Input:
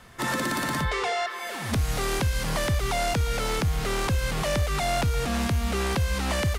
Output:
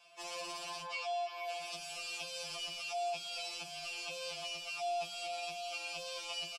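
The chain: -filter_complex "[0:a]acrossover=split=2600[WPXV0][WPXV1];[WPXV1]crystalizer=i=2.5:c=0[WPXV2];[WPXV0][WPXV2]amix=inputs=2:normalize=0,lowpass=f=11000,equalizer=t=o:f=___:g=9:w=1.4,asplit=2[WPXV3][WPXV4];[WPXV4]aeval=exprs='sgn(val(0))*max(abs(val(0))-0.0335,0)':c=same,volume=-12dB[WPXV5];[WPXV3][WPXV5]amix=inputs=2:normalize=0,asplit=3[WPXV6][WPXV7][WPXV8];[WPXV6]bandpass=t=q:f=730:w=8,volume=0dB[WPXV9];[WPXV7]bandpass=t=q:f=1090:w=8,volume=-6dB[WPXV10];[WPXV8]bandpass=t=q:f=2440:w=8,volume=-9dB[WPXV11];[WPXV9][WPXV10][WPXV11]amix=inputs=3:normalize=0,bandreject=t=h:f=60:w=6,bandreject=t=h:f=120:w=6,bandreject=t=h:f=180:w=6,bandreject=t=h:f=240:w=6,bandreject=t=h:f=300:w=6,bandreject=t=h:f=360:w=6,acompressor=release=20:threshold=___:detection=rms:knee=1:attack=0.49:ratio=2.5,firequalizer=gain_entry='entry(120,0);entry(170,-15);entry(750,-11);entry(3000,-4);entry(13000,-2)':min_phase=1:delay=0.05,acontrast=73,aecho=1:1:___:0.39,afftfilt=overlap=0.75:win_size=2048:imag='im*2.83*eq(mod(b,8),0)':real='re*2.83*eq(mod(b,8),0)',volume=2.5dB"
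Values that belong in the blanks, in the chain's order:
5000, -38dB, 6.2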